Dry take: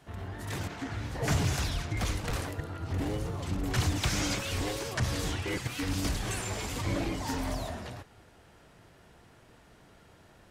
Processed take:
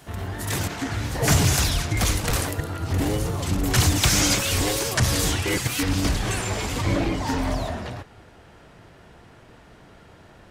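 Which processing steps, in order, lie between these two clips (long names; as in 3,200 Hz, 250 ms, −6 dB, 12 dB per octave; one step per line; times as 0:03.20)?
high-shelf EQ 6,200 Hz +10.5 dB, from 0:05.83 −3.5 dB, from 0:06.96 −8.5 dB
level +8.5 dB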